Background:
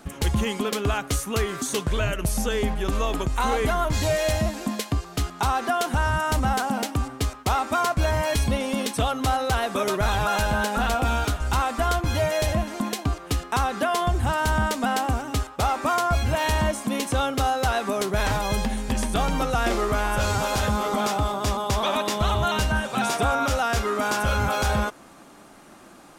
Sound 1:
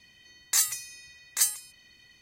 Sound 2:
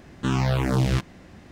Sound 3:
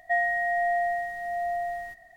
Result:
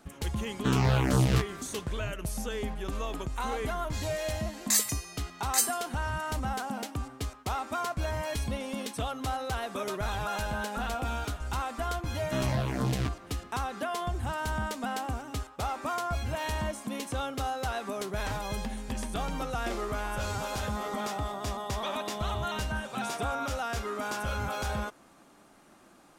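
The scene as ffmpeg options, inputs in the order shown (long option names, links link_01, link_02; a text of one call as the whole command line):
ffmpeg -i bed.wav -i cue0.wav -i cue1.wav -i cue2.wav -filter_complex "[2:a]asplit=2[link_01][link_02];[0:a]volume=-9.5dB[link_03];[1:a]asoftclip=type=tanh:threshold=-10dB[link_04];[3:a]acompressor=threshold=-36dB:ratio=6:attack=3.2:release=140:knee=1:detection=peak[link_05];[link_01]atrim=end=1.51,asetpts=PTS-STARTPTS,volume=-2.5dB,afade=type=in:duration=0.004:curve=hsin,afade=type=out:start_time=1.506:duration=0.004:curve=hsin,adelay=410[link_06];[link_04]atrim=end=2.21,asetpts=PTS-STARTPTS,volume=-1dB,afade=type=in:duration=0.004:curve=hsin,afade=type=out:start_time=2.206:duration=0.004:curve=hsin,adelay=183897S[link_07];[link_02]atrim=end=1.51,asetpts=PTS-STARTPTS,volume=-8dB,afade=type=in:duration=0.004:curve=hsin,afade=type=out:start_time=1.506:duration=0.004:curve=hsin,adelay=12080[link_08];[link_05]atrim=end=2.16,asetpts=PTS-STARTPTS,volume=-11dB,afade=type=in:duration=0.004:curve=hsin,afade=type=out:start_time=2.156:duration=0.004:curve=hsin,adelay=20670[link_09];[link_03][link_06][link_07][link_08][link_09]amix=inputs=5:normalize=0" out.wav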